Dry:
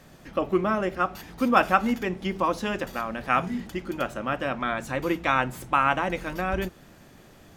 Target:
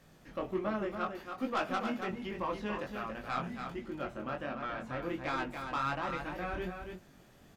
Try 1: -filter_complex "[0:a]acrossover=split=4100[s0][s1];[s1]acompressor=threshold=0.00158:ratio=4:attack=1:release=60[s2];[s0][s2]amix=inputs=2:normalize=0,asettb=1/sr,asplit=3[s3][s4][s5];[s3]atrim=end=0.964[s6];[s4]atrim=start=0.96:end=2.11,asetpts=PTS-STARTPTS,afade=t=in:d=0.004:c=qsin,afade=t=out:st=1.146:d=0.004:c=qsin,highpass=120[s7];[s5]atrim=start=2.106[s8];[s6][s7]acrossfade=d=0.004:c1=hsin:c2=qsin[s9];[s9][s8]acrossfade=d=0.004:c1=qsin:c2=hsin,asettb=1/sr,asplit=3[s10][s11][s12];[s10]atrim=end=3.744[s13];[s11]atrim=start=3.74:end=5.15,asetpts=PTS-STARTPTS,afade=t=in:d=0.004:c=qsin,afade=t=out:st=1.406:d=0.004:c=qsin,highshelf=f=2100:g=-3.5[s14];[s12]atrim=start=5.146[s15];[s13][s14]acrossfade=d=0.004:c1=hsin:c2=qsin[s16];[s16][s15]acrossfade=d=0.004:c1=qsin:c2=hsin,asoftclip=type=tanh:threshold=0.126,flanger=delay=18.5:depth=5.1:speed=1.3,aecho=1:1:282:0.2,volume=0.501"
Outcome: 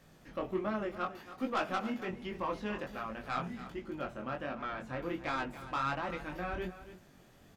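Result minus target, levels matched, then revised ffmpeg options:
echo-to-direct -7.5 dB
-filter_complex "[0:a]acrossover=split=4100[s0][s1];[s1]acompressor=threshold=0.00158:ratio=4:attack=1:release=60[s2];[s0][s2]amix=inputs=2:normalize=0,asettb=1/sr,asplit=3[s3][s4][s5];[s3]atrim=end=0.964[s6];[s4]atrim=start=0.96:end=2.11,asetpts=PTS-STARTPTS,afade=t=in:d=0.004:c=qsin,afade=t=out:st=1.146:d=0.004:c=qsin,highpass=120[s7];[s5]atrim=start=2.106[s8];[s6][s7]acrossfade=d=0.004:c1=hsin:c2=qsin[s9];[s9][s8]acrossfade=d=0.004:c1=qsin:c2=hsin,asettb=1/sr,asplit=3[s10][s11][s12];[s10]atrim=end=3.744[s13];[s11]atrim=start=3.74:end=5.15,asetpts=PTS-STARTPTS,afade=t=in:d=0.004:c=qsin,afade=t=out:st=1.406:d=0.004:c=qsin,highshelf=f=2100:g=-3.5[s14];[s12]atrim=start=5.146[s15];[s13][s14]acrossfade=d=0.004:c1=hsin:c2=qsin[s16];[s16][s15]acrossfade=d=0.004:c1=qsin:c2=hsin,asoftclip=type=tanh:threshold=0.126,flanger=delay=18.5:depth=5.1:speed=1.3,aecho=1:1:282:0.473,volume=0.501"

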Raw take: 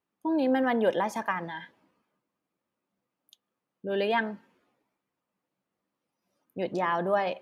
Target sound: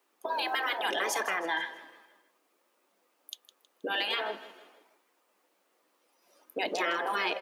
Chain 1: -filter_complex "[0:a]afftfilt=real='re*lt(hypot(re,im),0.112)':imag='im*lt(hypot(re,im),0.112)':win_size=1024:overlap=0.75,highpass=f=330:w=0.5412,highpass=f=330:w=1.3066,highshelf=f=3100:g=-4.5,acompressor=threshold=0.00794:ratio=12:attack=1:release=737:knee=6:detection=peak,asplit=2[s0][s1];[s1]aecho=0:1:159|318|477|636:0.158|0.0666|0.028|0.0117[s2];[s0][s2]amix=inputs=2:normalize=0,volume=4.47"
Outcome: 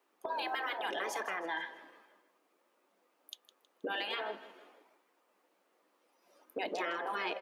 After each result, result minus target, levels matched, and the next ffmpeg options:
compression: peak gain reduction +4.5 dB; 8 kHz band -4.5 dB
-filter_complex "[0:a]afftfilt=real='re*lt(hypot(re,im),0.112)':imag='im*lt(hypot(re,im),0.112)':win_size=1024:overlap=0.75,highpass=f=330:w=0.5412,highpass=f=330:w=1.3066,highshelf=f=3100:g=-4.5,acompressor=threshold=0.0178:ratio=12:attack=1:release=737:knee=6:detection=peak,asplit=2[s0][s1];[s1]aecho=0:1:159|318|477|636:0.158|0.0666|0.028|0.0117[s2];[s0][s2]amix=inputs=2:normalize=0,volume=4.47"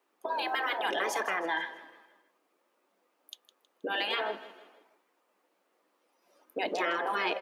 8 kHz band -4.5 dB
-filter_complex "[0:a]afftfilt=real='re*lt(hypot(re,im),0.112)':imag='im*lt(hypot(re,im),0.112)':win_size=1024:overlap=0.75,highpass=f=330:w=0.5412,highpass=f=330:w=1.3066,highshelf=f=3100:g=3,acompressor=threshold=0.0178:ratio=12:attack=1:release=737:knee=6:detection=peak,asplit=2[s0][s1];[s1]aecho=0:1:159|318|477|636:0.158|0.0666|0.028|0.0117[s2];[s0][s2]amix=inputs=2:normalize=0,volume=4.47"

